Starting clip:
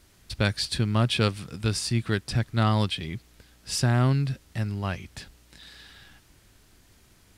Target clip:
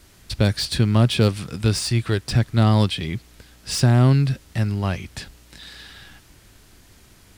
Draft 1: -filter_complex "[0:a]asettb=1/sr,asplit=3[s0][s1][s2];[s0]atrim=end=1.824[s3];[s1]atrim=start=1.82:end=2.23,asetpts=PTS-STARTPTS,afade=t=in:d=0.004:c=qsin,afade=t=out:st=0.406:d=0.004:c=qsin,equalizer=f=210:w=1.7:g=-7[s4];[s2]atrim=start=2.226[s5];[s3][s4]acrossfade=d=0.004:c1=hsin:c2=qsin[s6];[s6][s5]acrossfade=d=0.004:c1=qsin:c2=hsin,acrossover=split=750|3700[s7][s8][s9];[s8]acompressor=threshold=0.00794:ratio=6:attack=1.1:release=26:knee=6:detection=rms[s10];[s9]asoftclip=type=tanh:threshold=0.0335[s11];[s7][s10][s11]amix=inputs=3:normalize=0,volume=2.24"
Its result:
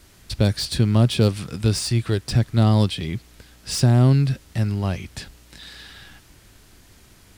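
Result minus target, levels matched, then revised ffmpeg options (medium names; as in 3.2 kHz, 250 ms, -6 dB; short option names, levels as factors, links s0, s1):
compression: peak gain reduction +6.5 dB
-filter_complex "[0:a]asettb=1/sr,asplit=3[s0][s1][s2];[s0]atrim=end=1.824[s3];[s1]atrim=start=1.82:end=2.23,asetpts=PTS-STARTPTS,afade=t=in:d=0.004:c=qsin,afade=t=out:st=0.406:d=0.004:c=qsin,equalizer=f=210:w=1.7:g=-7[s4];[s2]atrim=start=2.226[s5];[s3][s4]acrossfade=d=0.004:c1=hsin:c2=qsin[s6];[s6][s5]acrossfade=d=0.004:c1=qsin:c2=hsin,acrossover=split=750|3700[s7][s8][s9];[s8]acompressor=threshold=0.02:ratio=6:attack=1.1:release=26:knee=6:detection=rms[s10];[s9]asoftclip=type=tanh:threshold=0.0335[s11];[s7][s10][s11]amix=inputs=3:normalize=0,volume=2.24"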